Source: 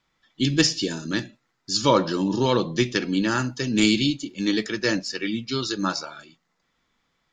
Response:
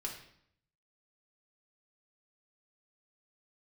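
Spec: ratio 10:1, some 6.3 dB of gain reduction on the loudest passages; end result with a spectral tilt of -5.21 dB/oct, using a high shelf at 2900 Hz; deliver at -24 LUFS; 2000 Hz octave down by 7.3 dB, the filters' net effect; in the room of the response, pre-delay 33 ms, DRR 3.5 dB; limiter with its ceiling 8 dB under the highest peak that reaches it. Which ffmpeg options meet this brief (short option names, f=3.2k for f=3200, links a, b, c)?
-filter_complex "[0:a]equalizer=f=2k:t=o:g=-7.5,highshelf=f=2.9k:g=-5,acompressor=threshold=-21dB:ratio=10,alimiter=limit=-20dB:level=0:latency=1,asplit=2[a][b];[1:a]atrim=start_sample=2205,adelay=33[c];[b][c]afir=irnorm=-1:irlink=0,volume=-3.5dB[d];[a][d]amix=inputs=2:normalize=0,volume=5dB"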